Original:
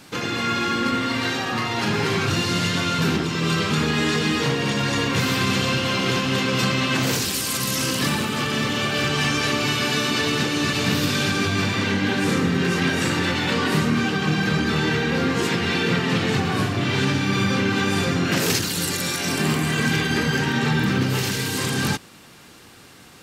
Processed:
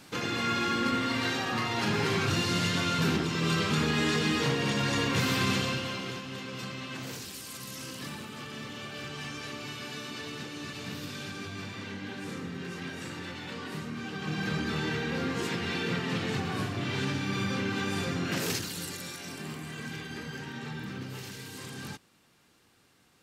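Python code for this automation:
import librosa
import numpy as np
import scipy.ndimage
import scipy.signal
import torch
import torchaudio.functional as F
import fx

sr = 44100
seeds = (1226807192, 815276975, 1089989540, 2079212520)

y = fx.gain(x, sr, db=fx.line((5.51, -6.0), (6.24, -17.5), (13.95, -17.5), (14.45, -10.0), (18.47, -10.0), (19.4, -18.0)))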